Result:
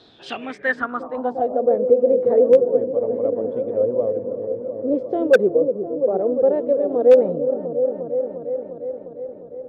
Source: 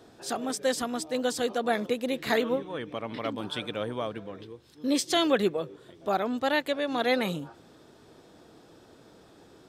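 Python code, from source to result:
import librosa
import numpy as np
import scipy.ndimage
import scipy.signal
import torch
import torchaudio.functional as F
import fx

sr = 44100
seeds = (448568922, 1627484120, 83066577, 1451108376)

y = fx.echo_opening(x, sr, ms=352, hz=400, octaves=1, feedback_pct=70, wet_db=-6)
y = fx.filter_sweep_lowpass(y, sr, from_hz=4000.0, to_hz=510.0, start_s=0.05, end_s=1.7, q=7.4)
y = 10.0 ** (-4.0 / 20.0) * (np.abs((y / 10.0 ** (-4.0 / 20.0) + 3.0) % 4.0 - 2.0) - 1.0)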